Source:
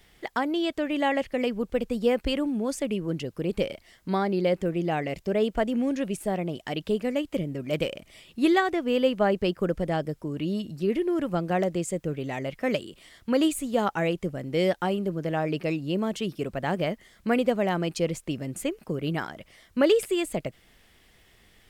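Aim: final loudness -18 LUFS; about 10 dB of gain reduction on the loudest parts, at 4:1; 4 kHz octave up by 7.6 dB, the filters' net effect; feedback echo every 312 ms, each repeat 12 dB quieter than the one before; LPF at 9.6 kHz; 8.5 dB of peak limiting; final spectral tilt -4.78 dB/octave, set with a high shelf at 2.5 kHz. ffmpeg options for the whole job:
-af "lowpass=9600,highshelf=f=2500:g=4,equalizer=f=4000:t=o:g=7.5,acompressor=threshold=0.0398:ratio=4,alimiter=limit=0.0631:level=0:latency=1,aecho=1:1:312|624|936:0.251|0.0628|0.0157,volume=6.31"

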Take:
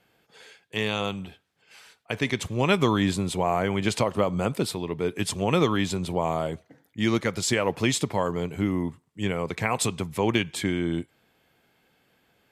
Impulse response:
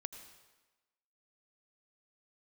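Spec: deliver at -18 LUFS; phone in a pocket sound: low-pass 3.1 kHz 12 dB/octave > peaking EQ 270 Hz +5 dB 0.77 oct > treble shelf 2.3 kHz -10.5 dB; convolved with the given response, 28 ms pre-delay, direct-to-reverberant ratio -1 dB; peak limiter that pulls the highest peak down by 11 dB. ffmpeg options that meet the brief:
-filter_complex "[0:a]alimiter=limit=0.119:level=0:latency=1,asplit=2[s0][s1];[1:a]atrim=start_sample=2205,adelay=28[s2];[s1][s2]afir=irnorm=-1:irlink=0,volume=1.58[s3];[s0][s3]amix=inputs=2:normalize=0,lowpass=3100,equalizer=f=270:t=o:w=0.77:g=5,highshelf=f=2300:g=-10.5,volume=2.51"

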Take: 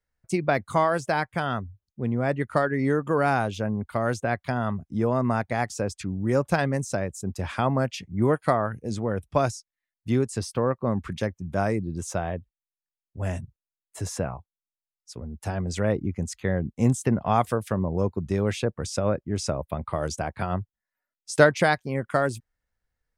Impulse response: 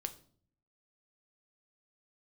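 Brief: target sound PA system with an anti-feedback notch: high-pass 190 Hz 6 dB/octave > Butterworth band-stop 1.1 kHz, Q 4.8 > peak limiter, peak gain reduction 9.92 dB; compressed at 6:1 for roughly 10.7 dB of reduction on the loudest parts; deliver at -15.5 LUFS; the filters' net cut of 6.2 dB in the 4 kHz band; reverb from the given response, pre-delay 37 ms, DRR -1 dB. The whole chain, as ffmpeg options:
-filter_complex "[0:a]equalizer=f=4000:t=o:g=-8.5,acompressor=threshold=0.0708:ratio=6,asplit=2[s0][s1];[1:a]atrim=start_sample=2205,adelay=37[s2];[s1][s2]afir=irnorm=-1:irlink=0,volume=1.33[s3];[s0][s3]amix=inputs=2:normalize=0,highpass=f=190:p=1,asuperstop=centerf=1100:order=8:qfactor=4.8,volume=5.62,alimiter=limit=0.631:level=0:latency=1"

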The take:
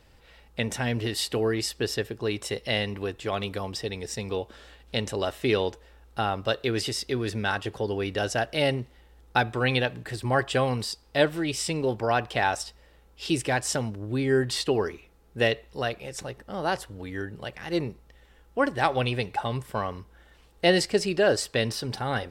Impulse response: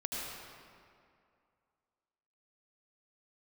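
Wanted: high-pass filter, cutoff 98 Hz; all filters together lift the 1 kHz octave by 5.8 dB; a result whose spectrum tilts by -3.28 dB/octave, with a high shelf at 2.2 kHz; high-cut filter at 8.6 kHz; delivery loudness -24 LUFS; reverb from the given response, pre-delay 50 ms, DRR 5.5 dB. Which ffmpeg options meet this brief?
-filter_complex "[0:a]highpass=98,lowpass=8600,equalizer=f=1000:t=o:g=6.5,highshelf=f=2200:g=7.5,asplit=2[s0][s1];[1:a]atrim=start_sample=2205,adelay=50[s2];[s1][s2]afir=irnorm=-1:irlink=0,volume=0.355[s3];[s0][s3]amix=inputs=2:normalize=0,volume=0.944"

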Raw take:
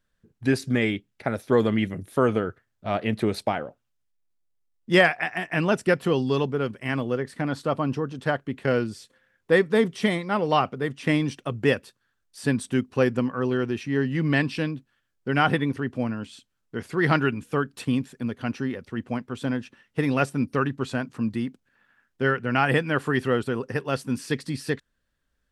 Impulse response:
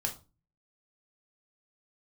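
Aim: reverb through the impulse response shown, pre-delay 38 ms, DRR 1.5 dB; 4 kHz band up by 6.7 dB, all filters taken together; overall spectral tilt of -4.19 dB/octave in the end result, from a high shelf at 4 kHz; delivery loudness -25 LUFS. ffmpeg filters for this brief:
-filter_complex "[0:a]highshelf=f=4000:g=6,equalizer=f=4000:t=o:g=6,asplit=2[s0][s1];[1:a]atrim=start_sample=2205,adelay=38[s2];[s1][s2]afir=irnorm=-1:irlink=0,volume=0.596[s3];[s0][s3]amix=inputs=2:normalize=0,volume=0.708"

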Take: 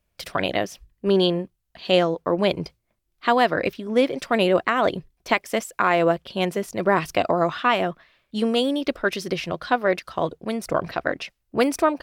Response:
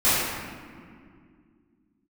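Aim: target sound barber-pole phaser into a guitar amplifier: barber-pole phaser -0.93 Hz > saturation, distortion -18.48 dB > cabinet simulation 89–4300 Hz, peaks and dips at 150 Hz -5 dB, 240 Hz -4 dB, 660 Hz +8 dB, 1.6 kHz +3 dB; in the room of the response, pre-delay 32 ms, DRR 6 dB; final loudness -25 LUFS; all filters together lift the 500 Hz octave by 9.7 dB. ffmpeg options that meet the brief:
-filter_complex "[0:a]equalizer=f=500:t=o:g=8,asplit=2[s0][s1];[1:a]atrim=start_sample=2205,adelay=32[s2];[s1][s2]afir=irnorm=-1:irlink=0,volume=0.0562[s3];[s0][s3]amix=inputs=2:normalize=0,asplit=2[s4][s5];[s5]afreqshift=-0.93[s6];[s4][s6]amix=inputs=2:normalize=1,asoftclip=threshold=0.398,highpass=89,equalizer=f=150:t=q:w=4:g=-5,equalizer=f=240:t=q:w=4:g=-4,equalizer=f=660:t=q:w=4:g=8,equalizer=f=1600:t=q:w=4:g=3,lowpass=f=4300:w=0.5412,lowpass=f=4300:w=1.3066,volume=0.501"

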